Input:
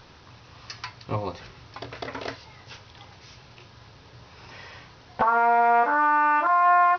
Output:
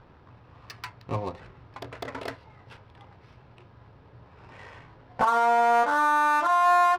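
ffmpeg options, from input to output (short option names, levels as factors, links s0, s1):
-filter_complex "[0:a]asettb=1/sr,asplit=3[s0][s1][s2];[s0]atrim=end=4.574[s3];[s1]atrim=start=4.57:end=5.25,asetpts=PTS-STARTPTS,afade=t=in:d=0.004:c=qsin,afade=t=out:st=0.676:d=0.004:c=qsin,asplit=2[s4][s5];[s5]adelay=19,volume=0.562[s6];[s4][s6]amix=inputs=2:normalize=0,atrim=end_sample=29988[s7];[s2]atrim=start=5.246[s8];[s3][s7]acrossfade=d=0.004:c1=hsin:c2=qsin[s9];[s9][s8]acrossfade=d=0.004:c1=qsin:c2=hsin,adynamicsmooth=sensitivity=7:basefreq=1300,volume=0.841"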